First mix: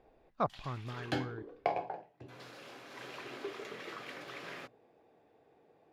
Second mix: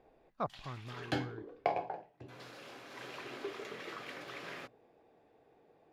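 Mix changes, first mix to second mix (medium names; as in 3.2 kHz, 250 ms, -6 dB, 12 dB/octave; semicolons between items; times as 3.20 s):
speech -4.5 dB; background: remove high-pass 59 Hz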